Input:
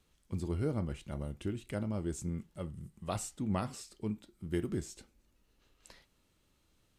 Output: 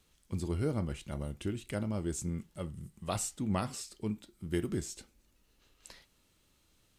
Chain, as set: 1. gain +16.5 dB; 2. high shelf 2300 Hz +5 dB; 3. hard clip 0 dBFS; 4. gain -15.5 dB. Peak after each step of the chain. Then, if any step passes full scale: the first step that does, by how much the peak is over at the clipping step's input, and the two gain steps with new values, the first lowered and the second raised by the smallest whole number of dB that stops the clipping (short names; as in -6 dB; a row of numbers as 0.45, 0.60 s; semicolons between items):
-2.0, -1.5, -1.5, -17.0 dBFS; no overload